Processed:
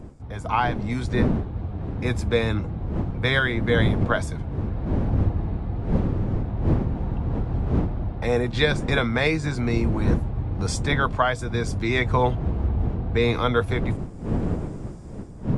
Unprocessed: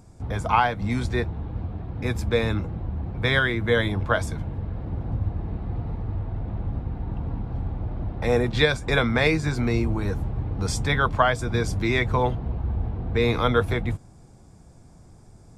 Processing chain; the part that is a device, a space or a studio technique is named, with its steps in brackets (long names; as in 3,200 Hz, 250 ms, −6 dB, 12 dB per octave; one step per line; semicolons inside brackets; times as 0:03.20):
smartphone video outdoors (wind on the microphone; automatic gain control; level −6.5 dB; AAC 96 kbit/s 24,000 Hz)